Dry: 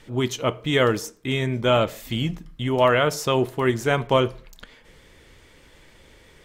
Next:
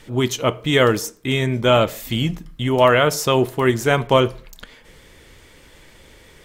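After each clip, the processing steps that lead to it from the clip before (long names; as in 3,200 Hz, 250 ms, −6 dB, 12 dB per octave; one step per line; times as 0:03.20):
high-shelf EQ 8,700 Hz +6 dB
level +4 dB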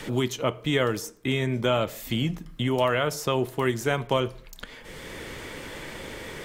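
multiband upward and downward compressor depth 70%
level −8 dB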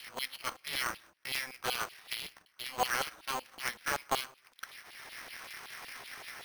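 auto-filter high-pass saw down 5.3 Hz 740–3,300 Hz
bad sample-rate conversion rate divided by 6×, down filtered, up hold
ring modulator with a square carrier 130 Hz
level −8 dB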